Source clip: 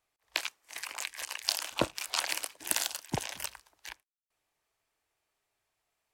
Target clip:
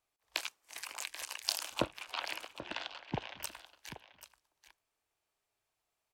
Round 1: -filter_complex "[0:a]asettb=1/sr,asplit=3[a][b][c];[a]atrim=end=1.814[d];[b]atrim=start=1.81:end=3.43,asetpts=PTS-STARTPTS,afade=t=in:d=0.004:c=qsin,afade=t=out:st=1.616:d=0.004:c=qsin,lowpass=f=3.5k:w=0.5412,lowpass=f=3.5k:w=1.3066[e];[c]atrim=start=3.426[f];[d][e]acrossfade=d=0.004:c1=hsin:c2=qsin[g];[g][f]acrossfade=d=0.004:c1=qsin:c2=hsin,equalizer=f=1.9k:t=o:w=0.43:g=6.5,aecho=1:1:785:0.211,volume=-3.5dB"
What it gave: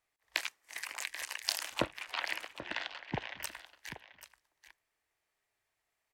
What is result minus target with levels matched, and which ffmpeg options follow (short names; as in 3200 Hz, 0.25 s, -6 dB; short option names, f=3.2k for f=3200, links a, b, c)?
2000 Hz band +3.5 dB
-filter_complex "[0:a]asettb=1/sr,asplit=3[a][b][c];[a]atrim=end=1.814[d];[b]atrim=start=1.81:end=3.43,asetpts=PTS-STARTPTS,afade=t=in:d=0.004:c=qsin,afade=t=out:st=1.616:d=0.004:c=qsin,lowpass=f=3.5k:w=0.5412,lowpass=f=3.5k:w=1.3066[e];[c]atrim=start=3.426[f];[d][e]acrossfade=d=0.004:c1=hsin:c2=qsin[g];[g][f]acrossfade=d=0.004:c1=qsin:c2=hsin,equalizer=f=1.9k:t=o:w=0.43:g=-3.5,aecho=1:1:785:0.211,volume=-3.5dB"